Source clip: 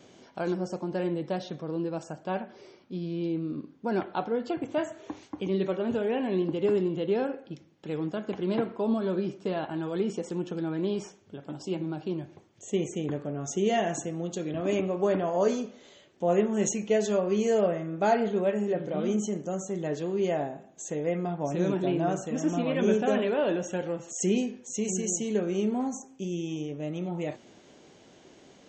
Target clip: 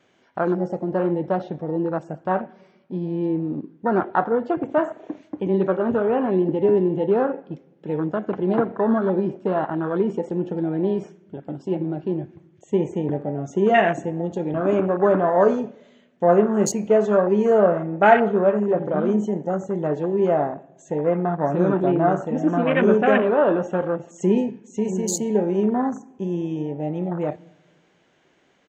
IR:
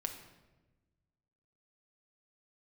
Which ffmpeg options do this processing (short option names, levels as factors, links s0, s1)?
-filter_complex "[0:a]afwtdn=0.0178,firequalizer=gain_entry='entry(290,0);entry(1600,10);entry(4700,-2)':delay=0.05:min_phase=1,asplit=2[s0][s1];[1:a]atrim=start_sample=2205[s2];[s1][s2]afir=irnorm=-1:irlink=0,volume=0.178[s3];[s0][s3]amix=inputs=2:normalize=0,volume=1.88"